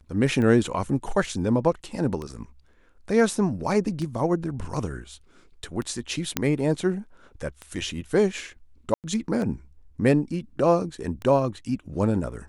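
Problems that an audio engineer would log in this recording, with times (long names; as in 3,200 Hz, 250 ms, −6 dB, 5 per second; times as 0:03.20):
scratch tick 33 1/3 rpm −20 dBFS
0:06.37: click −5 dBFS
0:08.94–0:09.04: drop-out 98 ms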